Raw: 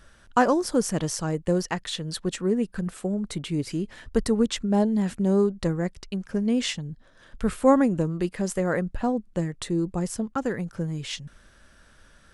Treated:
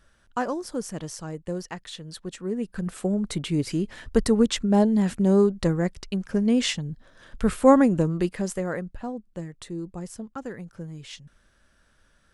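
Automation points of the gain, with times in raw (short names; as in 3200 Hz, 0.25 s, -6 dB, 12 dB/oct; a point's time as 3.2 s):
2.37 s -7.5 dB
3.02 s +2.5 dB
8.19 s +2.5 dB
8.99 s -8 dB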